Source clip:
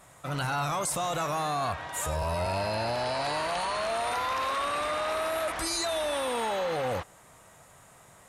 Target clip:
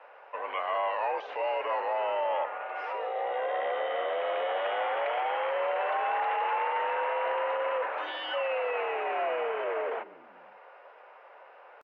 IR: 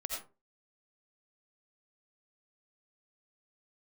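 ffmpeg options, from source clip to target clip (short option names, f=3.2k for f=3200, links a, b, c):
-filter_complex "[0:a]asplit=2[a][b];[b]acompressor=threshold=-44dB:ratio=6,volume=-1dB[c];[a][c]amix=inputs=2:normalize=0,asetrate=30870,aresample=44100,highpass=f=400:t=q:w=0.5412,highpass=f=400:t=q:w=1.307,lowpass=f=2.6k:t=q:w=0.5176,lowpass=f=2.6k:t=q:w=0.7071,lowpass=f=2.6k:t=q:w=1.932,afreqshift=67,asetrate=45392,aresample=44100,atempo=0.971532,asplit=5[d][e][f][g][h];[e]adelay=144,afreqshift=-65,volume=-19.5dB[i];[f]adelay=288,afreqshift=-130,volume=-25.9dB[j];[g]adelay=432,afreqshift=-195,volume=-32.3dB[k];[h]adelay=576,afreqshift=-260,volume=-38.6dB[l];[d][i][j][k][l]amix=inputs=5:normalize=0"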